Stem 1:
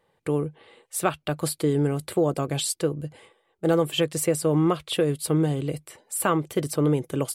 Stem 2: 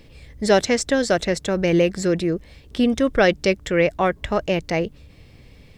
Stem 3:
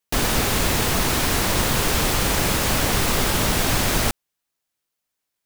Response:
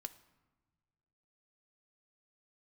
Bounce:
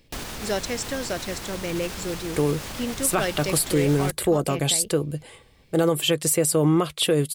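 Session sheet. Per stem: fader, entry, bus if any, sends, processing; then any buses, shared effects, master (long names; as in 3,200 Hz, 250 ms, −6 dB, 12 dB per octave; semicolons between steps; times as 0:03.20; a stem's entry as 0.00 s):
+3.0 dB, 2.10 s, no send, no processing
−11.0 dB, 0.00 s, no send, no processing
−6.0 dB, 0.00 s, no send, high-shelf EQ 7,500 Hz −11.5 dB; brickwall limiter −14 dBFS, peak gain reduction 5 dB; automatic ducking −7 dB, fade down 0.25 s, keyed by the second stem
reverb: not used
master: high-shelf EQ 4,100 Hz +8.5 dB; brickwall limiter −11.5 dBFS, peak gain reduction 6.5 dB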